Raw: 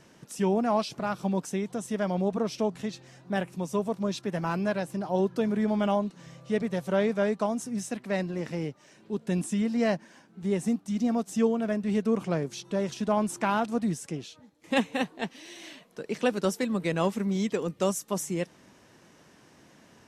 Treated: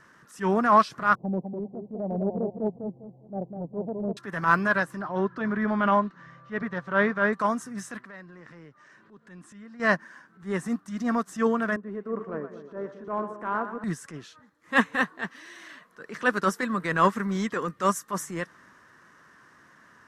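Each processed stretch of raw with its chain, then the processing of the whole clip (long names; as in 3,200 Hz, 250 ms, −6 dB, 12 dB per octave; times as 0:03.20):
0:01.15–0:04.17: Butterworth low-pass 800 Hz 72 dB per octave + repeating echo 200 ms, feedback 27%, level −6 dB
0:05.01–0:07.33: high-frequency loss of the air 170 metres + notch filter 470 Hz, Q 8.7
0:08.01–0:09.80: high-frequency loss of the air 56 metres + downward compressor 2 to 1, threshold −48 dBFS
0:11.76–0:13.84: resonant band-pass 410 Hz, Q 1.4 + echo with a time of its own for lows and highs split 530 Hz, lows 221 ms, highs 121 ms, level −8.5 dB
whole clip: flat-topped bell 1,400 Hz +14.5 dB 1.1 octaves; transient designer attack −8 dB, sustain +1 dB; expander for the loud parts 1.5 to 1, over −38 dBFS; level +4.5 dB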